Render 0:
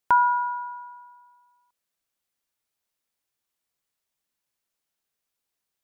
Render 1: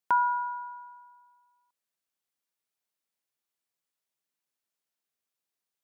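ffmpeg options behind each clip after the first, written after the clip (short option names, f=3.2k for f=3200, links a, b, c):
-af "highpass=130,volume=-5.5dB"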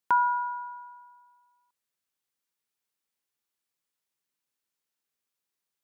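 -af "equalizer=f=660:t=o:w=0.26:g=-6.5,volume=1.5dB"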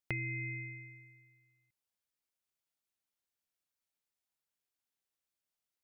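-af "acompressor=threshold=-30dB:ratio=6,aeval=exprs='val(0)*sin(2*PI*1100*n/s)':c=same,volume=-2.5dB"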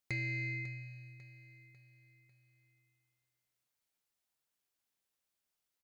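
-af "asoftclip=type=tanh:threshold=-33dB,aecho=1:1:547|1094|1641|2188:0.2|0.0918|0.0422|0.0194,volume=3dB"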